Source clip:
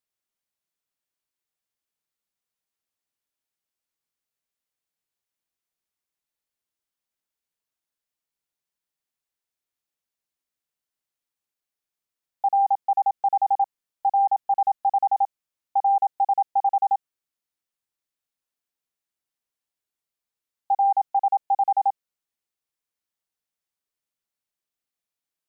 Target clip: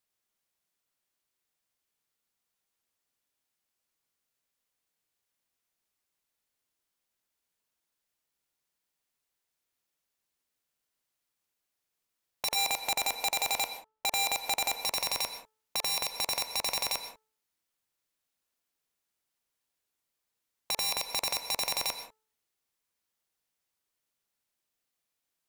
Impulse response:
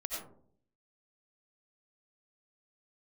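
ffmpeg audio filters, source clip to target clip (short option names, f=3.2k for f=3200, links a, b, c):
-filter_complex "[0:a]asplit=3[a][b][c];[a]afade=t=out:st=12.55:d=0.02[d];[b]lowpass=f=1k:p=1,afade=t=in:st=12.55:d=0.02,afade=t=out:st=14.73:d=0.02[e];[c]afade=t=in:st=14.73:d=0.02[f];[d][e][f]amix=inputs=3:normalize=0,aeval=exprs='(mod(12.6*val(0)+1,2)-1)/12.6':c=same,alimiter=level_in=3dB:limit=-24dB:level=0:latency=1,volume=-3dB,bandreject=f=436.3:t=h:w=4,bandreject=f=872.6:t=h:w=4,bandreject=f=1.3089k:t=h:w=4,bandreject=f=1.7452k:t=h:w=4,asplit=2[g][h];[1:a]atrim=start_sample=2205,atrim=end_sample=6615,asetrate=32634,aresample=44100[i];[h][i]afir=irnorm=-1:irlink=0,volume=-8.5dB[j];[g][j]amix=inputs=2:normalize=0,volume=1.5dB"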